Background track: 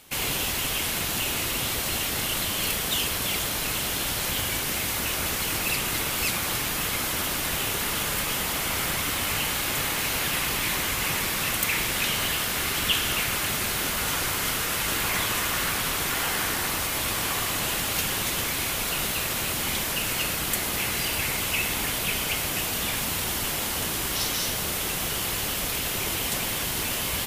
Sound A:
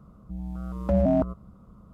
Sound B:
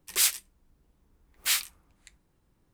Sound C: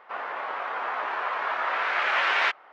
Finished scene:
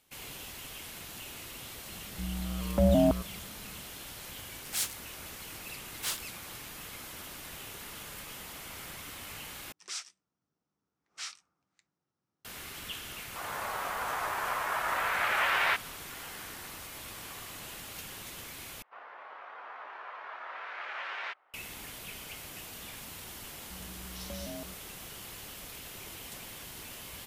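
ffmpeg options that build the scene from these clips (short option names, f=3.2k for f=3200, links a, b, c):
-filter_complex "[1:a]asplit=2[a][b];[2:a]asplit=2[c][d];[3:a]asplit=2[e][f];[0:a]volume=-17dB[g];[c]aeval=exprs='val(0)*sin(2*PI*700*n/s+700*0.4/3.2*sin(2*PI*3.2*n/s))':c=same[h];[d]highpass=f=110:w=0.5412,highpass=f=110:w=1.3066,equalizer=f=750:t=q:w=4:g=4,equalizer=f=1.3k:t=q:w=4:g=8,equalizer=f=5.6k:t=q:w=4:g=8,lowpass=f=7.7k:w=0.5412,lowpass=f=7.7k:w=1.3066[i];[e]dynaudnorm=f=140:g=3:m=5dB[j];[f]lowshelf=f=190:g=-7.5[k];[b]alimiter=limit=-20.5dB:level=0:latency=1:release=71[l];[g]asplit=3[m][n][o];[m]atrim=end=9.724[p];[i]atrim=end=2.73,asetpts=PTS-STARTPTS,volume=-15.5dB[q];[n]atrim=start=12.446:end=18.824[r];[k]atrim=end=2.72,asetpts=PTS-STARTPTS,volume=-15dB[s];[o]atrim=start=21.536[t];[a]atrim=end=1.93,asetpts=PTS-STARTPTS,volume=-1.5dB,afade=t=in:d=0.004:c=hsin,afade=t=out:st=1.926:d=0.004:c=hsin,adelay=1890[u];[h]atrim=end=2.73,asetpts=PTS-STARTPTS,volume=-6dB,afade=t=in:d=0.004:c=hsin,afade=t=out:st=2.726:d=0.004:c=hsin,adelay=201537S[v];[j]atrim=end=2.72,asetpts=PTS-STARTPTS,volume=-9dB,afade=t=in:d=0.004:c=hsin,afade=t=out:st=2.716:d=0.004:c=hsin,adelay=13250[w];[l]atrim=end=1.93,asetpts=PTS-STARTPTS,volume=-14.5dB,afade=t=in:d=0.004:c=hsin,afade=t=out:st=1.926:d=0.004:c=hsin,adelay=23410[x];[p][q]acrossfade=d=0.004:c1=hsin:c2=hsin[y];[y][r]acrossfade=d=0.004:c1=hsin:c2=hsin[z];[z][s]acrossfade=d=0.004:c1=hsin:c2=hsin[aa];[aa][t]acrossfade=d=0.004:c1=hsin:c2=hsin[ab];[ab][u][v][w][x]amix=inputs=5:normalize=0"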